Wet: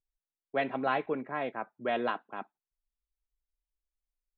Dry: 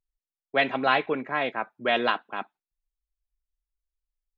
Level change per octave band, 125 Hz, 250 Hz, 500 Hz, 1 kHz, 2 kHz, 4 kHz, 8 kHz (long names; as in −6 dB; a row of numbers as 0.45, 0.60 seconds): −4.0 dB, −4.5 dB, −5.0 dB, −6.5 dB, −10.5 dB, −14.5 dB, can't be measured